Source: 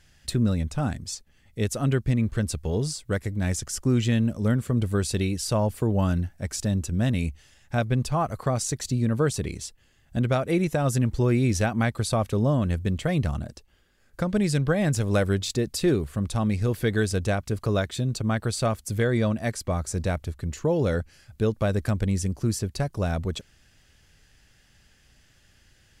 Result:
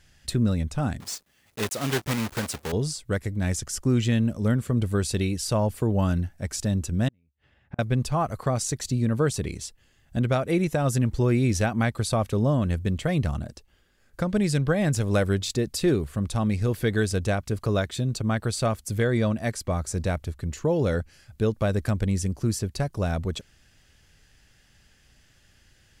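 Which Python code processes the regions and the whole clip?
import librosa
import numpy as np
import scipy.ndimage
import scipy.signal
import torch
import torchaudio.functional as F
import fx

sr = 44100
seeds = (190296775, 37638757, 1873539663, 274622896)

y = fx.chain(x, sr, fx.block_float(bits=3),
    fx.highpass(hz=260.0, slope=6), at=(1.0, 2.73))
y = fx.chain(y, sr, fx.highpass(hz=52.0, slope=12),
    fx.air_absorb(metres=490.0),
    fx.gate_flip(shuts_db=-24.0, range_db=-40), at=(7.08, 7.79))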